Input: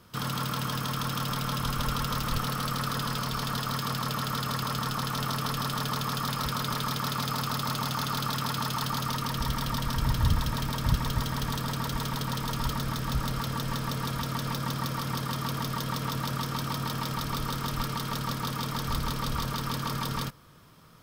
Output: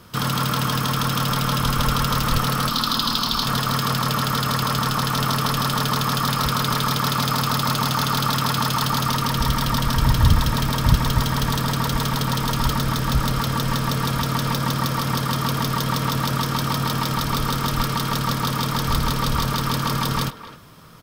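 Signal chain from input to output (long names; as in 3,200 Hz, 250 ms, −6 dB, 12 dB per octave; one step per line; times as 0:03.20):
0:02.69–0:03.46: octave-band graphic EQ 125/250/500/1,000/2,000/4,000/8,000 Hz −12/+5/−9/+3/−9/+11/−5 dB
far-end echo of a speakerphone 260 ms, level −13 dB
level +9 dB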